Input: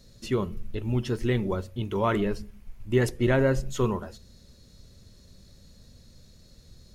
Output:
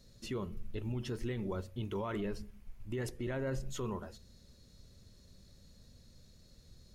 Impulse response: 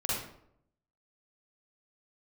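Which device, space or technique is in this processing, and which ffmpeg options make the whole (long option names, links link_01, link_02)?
stacked limiters: -af "alimiter=limit=-16.5dB:level=0:latency=1:release=332,alimiter=limit=-23dB:level=0:latency=1:release=21,volume=-6.5dB"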